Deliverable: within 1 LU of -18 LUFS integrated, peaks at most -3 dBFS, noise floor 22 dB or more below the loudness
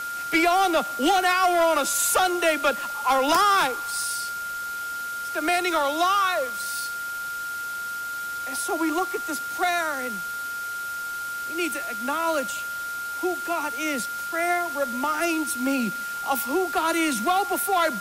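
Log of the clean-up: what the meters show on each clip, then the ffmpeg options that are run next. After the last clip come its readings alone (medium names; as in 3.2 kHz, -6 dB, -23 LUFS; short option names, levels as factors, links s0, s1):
steady tone 1.4 kHz; tone level -29 dBFS; noise floor -32 dBFS; noise floor target -47 dBFS; loudness -24.5 LUFS; peak level -10.0 dBFS; loudness target -18.0 LUFS
-> -af "bandreject=f=1400:w=30"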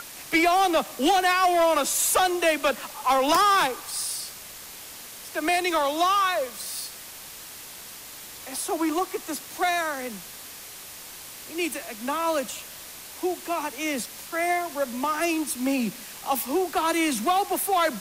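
steady tone not found; noise floor -42 dBFS; noise floor target -47 dBFS
-> -af "afftdn=nr=6:nf=-42"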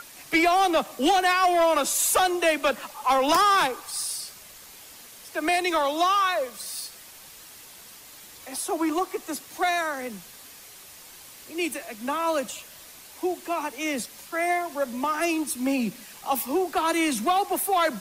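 noise floor -47 dBFS; loudness -24.5 LUFS; peak level -10.5 dBFS; loudness target -18.0 LUFS
-> -af "volume=2.11"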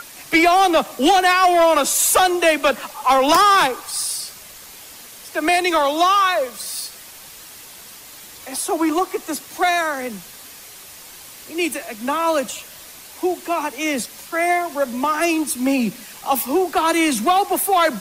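loudness -18.0 LUFS; peak level -4.0 dBFS; noise floor -40 dBFS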